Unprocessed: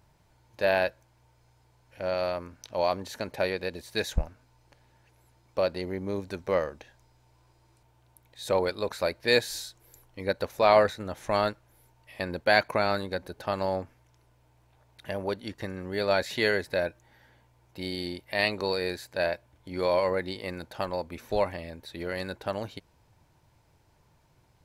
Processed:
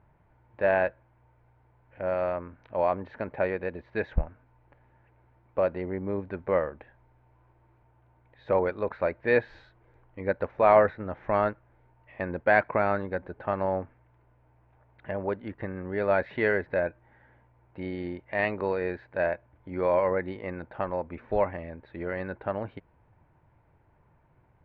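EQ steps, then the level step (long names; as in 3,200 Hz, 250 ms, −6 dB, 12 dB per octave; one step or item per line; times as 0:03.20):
low-pass filter 2,100 Hz 24 dB per octave
+1.0 dB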